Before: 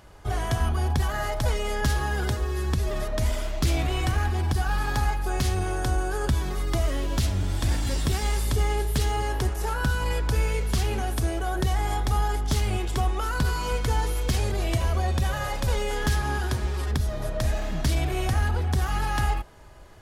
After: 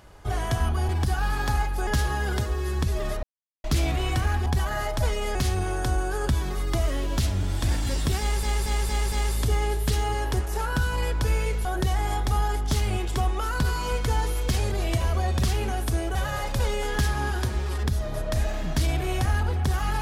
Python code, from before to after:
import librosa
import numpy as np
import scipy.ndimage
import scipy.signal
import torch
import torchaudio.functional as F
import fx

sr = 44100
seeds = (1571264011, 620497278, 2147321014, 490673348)

y = fx.edit(x, sr, fx.swap(start_s=0.89, length_s=0.89, other_s=4.37, other_length_s=0.98),
    fx.silence(start_s=3.14, length_s=0.41),
    fx.stutter(start_s=8.2, slice_s=0.23, count=5),
    fx.move(start_s=10.73, length_s=0.72, to_s=15.23), tone=tone)